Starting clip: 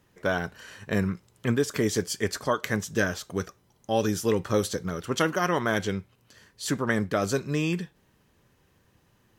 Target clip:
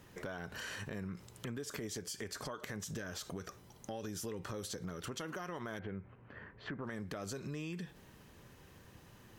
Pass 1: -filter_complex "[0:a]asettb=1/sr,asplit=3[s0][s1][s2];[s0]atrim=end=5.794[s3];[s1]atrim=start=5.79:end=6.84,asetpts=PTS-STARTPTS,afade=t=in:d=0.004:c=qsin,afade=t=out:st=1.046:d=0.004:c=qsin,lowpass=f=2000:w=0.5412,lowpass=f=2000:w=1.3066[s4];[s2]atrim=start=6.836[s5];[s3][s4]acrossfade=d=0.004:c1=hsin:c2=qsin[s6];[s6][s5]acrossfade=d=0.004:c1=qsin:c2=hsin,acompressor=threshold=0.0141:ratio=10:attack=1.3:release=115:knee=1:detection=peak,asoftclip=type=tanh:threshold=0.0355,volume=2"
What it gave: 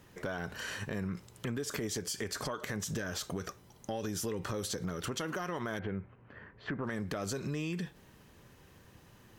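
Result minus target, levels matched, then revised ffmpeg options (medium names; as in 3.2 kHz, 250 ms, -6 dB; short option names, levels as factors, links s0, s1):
compression: peak gain reduction -6.5 dB
-filter_complex "[0:a]asettb=1/sr,asplit=3[s0][s1][s2];[s0]atrim=end=5.794[s3];[s1]atrim=start=5.79:end=6.84,asetpts=PTS-STARTPTS,afade=t=in:d=0.004:c=qsin,afade=t=out:st=1.046:d=0.004:c=qsin,lowpass=f=2000:w=0.5412,lowpass=f=2000:w=1.3066[s4];[s2]atrim=start=6.836[s5];[s3][s4]acrossfade=d=0.004:c1=hsin:c2=qsin[s6];[s6][s5]acrossfade=d=0.004:c1=qsin:c2=hsin,acompressor=threshold=0.00631:ratio=10:attack=1.3:release=115:knee=1:detection=peak,asoftclip=type=tanh:threshold=0.0355,volume=2"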